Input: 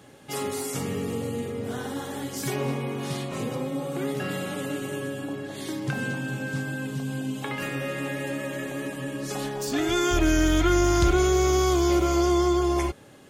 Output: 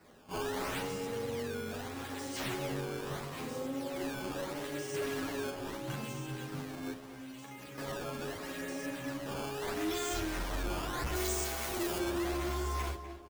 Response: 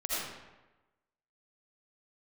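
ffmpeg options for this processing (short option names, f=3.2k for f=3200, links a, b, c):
-filter_complex "[0:a]asettb=1/sr,asplit=3[a][b][c];[a]atrim=end=4.944[d];[b]atrim=start=4.94:end=5.5,asetpts=PTS-STARTPTS,afade=t=in:d=0.004:c=qsin,afade=t=out:st=0.556:d=0.004:c=qsin,acontrast=78[e];[c]atrim=start=5.496[f];[d][e]acrossfade=d=0.004:c1=hsin:c2=qsin[g];[g][f]acrossfade=d=0.004:c1=qsin:c2=hsin,asplit=2[h][i];[i]adelay=41,volume=-2dB[j];[h][j]amix=inputs=2:normalize=0,asettb=1/sr,asplit=3[k][l][m];[k]atrim=end=6.934[n];[l]atrim=start=6.93:end=7.78,asetpts=PTS-STARTPTS,afade=t=in:d=0.004:c=qsin,afade=t=out:st=0.846:d=0.004:c=qsin,acrossover=split=650|3900[o][p][q];[o]acompressor=threshold=-39dB:ratio=4[r];[p]acompressor=threshold=-44dB:ratio=4[s];[q]acompressor=threshold=-54dB:ratio=4[t];[r][s][t]amix=inputs=3:normalize=0[u];[m]atrim=start=7.776[v];[n][u]acrossfade=d=0.004:c1=hsin:c2=qsin[w];[w][v]acrossfade=d=0.004:c1=qsin:c2=hsin,equalizer=f=9.2k:w=1.2:g=10,bandreject=f=50:t=h:w=6,bandreject=f=100:t=h:w=6,bandreject=f=150:t=h:w=6,bandreject=f=200:t=h:w=6,bandreject=f=250:t=h:w=6,bandreject=f=300:t=h:w=6,bandreject=f=350:t=h:w=6,acrusher=samples=13:mix=1:aa=0.000001:lfo=1:lforange=20.8:lforate=0.77,asplit=2[x][y];[y]adelay=249,lowpass=f=2.8k:p=1,volume=-12dB,asplit=2[z][aa];[aa]adelay=249,lowpass=f=2.8k:p=1,volume=0.42,asplit=2[ab][ac];[ac]adelay=249,lowpass=f=2.8k:p=1,volume=0.42,asplit=2[ad][ae];[ae]adelay=249,lowpass=f=2.8k:p=1,volume=0.42[af];[x][z][ab][ad][af]amix=inputs=5:normalize=0,asoftclip=type=hard:threshold=-22.5dB,asettb=1/sr,asplit=3[ag][ah][ai];[ag]atrim=end=11.154[aj];[ah]atrim=start=11.15:end=11.99,asetpts=PTS-STARTPTS,afade=t=in:d=0.004:c=qsin,afade=t=out:st=0.836:d=0.004:c=qsin,highshelf=f=5.4k:g=10.5[ak];[ai]atrim=start=11.986[al];[aj][ak]acrossfade=d=0.004:c1=hsin:c2=qsin[am];[am][al]acrossfade=d=0.004:c1=qsin:c2=hsin,asplit=2[an][ao];[ao]adelay=9.8,afreqshift=0.61[ap];[an][ap]amix=inputs=2:normalize=1,volume=-7dB"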